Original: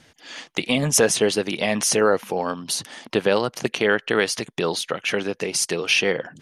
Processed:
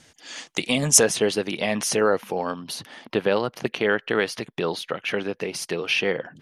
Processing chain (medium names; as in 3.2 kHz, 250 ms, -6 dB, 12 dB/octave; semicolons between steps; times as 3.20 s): peaking EQ 7.6 kHz +8 dB 1.1 oct, from 1.03 s -4 dB, from 2.61 s -11.5 dB; trim -2 dB